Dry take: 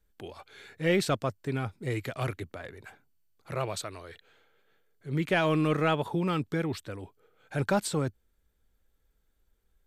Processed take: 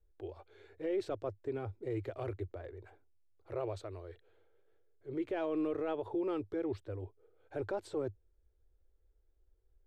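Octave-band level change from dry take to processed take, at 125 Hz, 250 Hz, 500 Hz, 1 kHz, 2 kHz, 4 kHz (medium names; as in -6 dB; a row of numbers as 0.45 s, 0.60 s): -13.5 dB, -7.5 dB, -5.5 dB, -12.0 dB, -17.5 dB, -19.0 dB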